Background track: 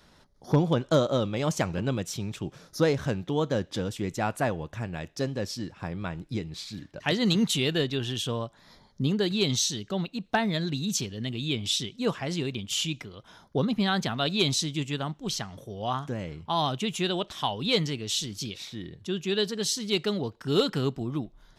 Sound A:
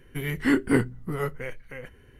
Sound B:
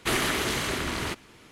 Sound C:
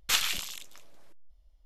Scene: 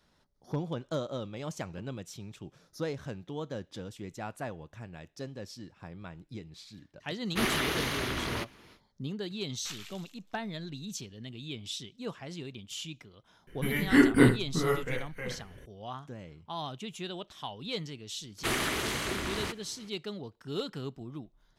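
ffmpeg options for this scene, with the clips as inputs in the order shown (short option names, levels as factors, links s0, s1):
-filter_complex "[2:a]asplit=2[s0][s1];[0:a]volume=0.282[s2];[s0]equalizer=f=7800:w=5:g=-14.5[s3];[3:a]equalizer=f=11000:t=o:w=0.79:g=-5[s4];[1:a]aecho=1:1:24|77:0.668|0.355[s5];[s3]atrim=end=1.51,asetpts=PTS-STARTPTS,volume=0.668,afade=t=in:d=0.1,afade=t=out:st=1.41:d=0.1,adelay=321930S[s6];[s4]atrim=end=1.65,asetpts=PTS-STARTPTS,volume=0.141,afade=t=in:d=0.004:c=hsin,afade=t=out:st=1.646:d=0.004:c=hsin,adelay=9560[s7];[s5]atrim=end=2.19,asetpts=PTS-STARTPTS,volume=0.944,afade=t=in:d=0.004:c=hsin,afade=t=out:st=2.186:d=0.004:c=hsin,adelay=13470[s8];[s1]atrim=end=1.51,asetpts=PTS-STARTPTS,volume=0.596,afade=t=in:d=0.004:c=hsin,afade=t=out:st=1.506:d=0.004:c=hsin,adelay=18380[s9];[s2][s6][s7][s8][s9]amix=inputs=5:normalize=0"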